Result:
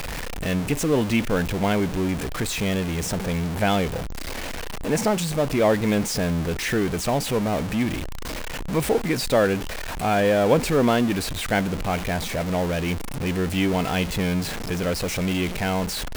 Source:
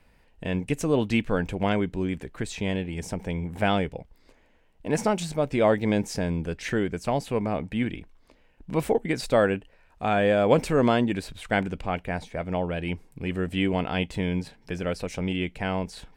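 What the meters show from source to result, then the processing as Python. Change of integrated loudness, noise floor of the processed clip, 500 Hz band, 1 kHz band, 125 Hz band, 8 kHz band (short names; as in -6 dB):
+3.0 dB, -30 dBFS, +2.5 dB, +3.0 dB, +4.0 dB, +10.5 dB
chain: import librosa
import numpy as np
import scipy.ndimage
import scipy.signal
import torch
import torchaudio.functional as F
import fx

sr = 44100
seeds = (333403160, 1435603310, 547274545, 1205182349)

y = x + 0.5 * 10.0 ** (-24.5 / 20.0) * np.sign(x)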